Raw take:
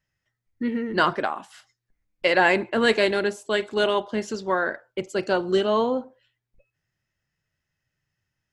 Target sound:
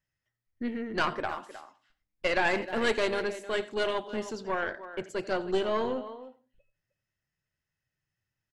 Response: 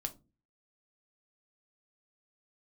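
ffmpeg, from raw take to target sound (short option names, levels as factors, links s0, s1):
-filter_complex "[0:a]asplit=2[s0][s1];[s1]adelay=310,highpass=300,lowpass=3400,asoftclip=type=hard:threshold=0.211,volume=0.224[s2];[s0][s2]amix=inputs=2:normalize=0,asplit=2[s3][s4];[1:a]atrim=start_sample=2205,adelay=85[s5];[s4][s5]afir=irnorm=-1:irlink=0,volume=0.158[s6];[s3][s6]amix=inputs=2:normalize=0,aeval=exprs='(tanh(4.47*val(0)+0.7)-tanh(0.7))/4.47':c=same,volume=0.708"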